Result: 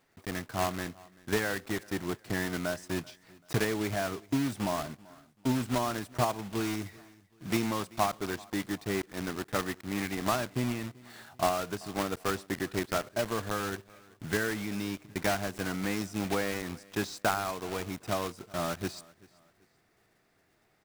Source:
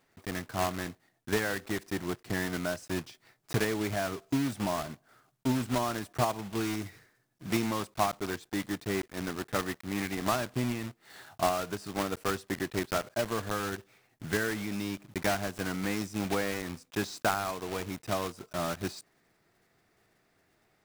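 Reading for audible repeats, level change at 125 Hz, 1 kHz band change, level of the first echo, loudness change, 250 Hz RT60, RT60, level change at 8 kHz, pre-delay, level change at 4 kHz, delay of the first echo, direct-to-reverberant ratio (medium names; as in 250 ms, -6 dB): 2, 0.0 dB, 0.0 dB, -23.5 dB, 0.0 dB, no reverb, no reverb, 0.0 dB, no reverb, 0.0 dB, 386 ms, no reverb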